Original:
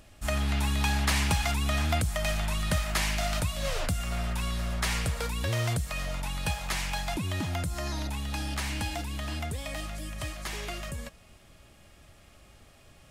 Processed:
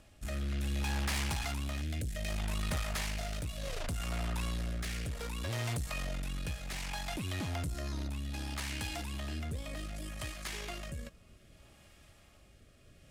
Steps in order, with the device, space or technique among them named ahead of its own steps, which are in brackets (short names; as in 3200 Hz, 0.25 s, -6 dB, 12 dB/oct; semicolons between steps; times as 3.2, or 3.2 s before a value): 1.81–2.29 band shelf 1000 Hz -13.5 dB 1.1 oct; overdriven rotary cabinet (tube stage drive 30 dB, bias 0.5; rotary speaker horn 0.65 Hz)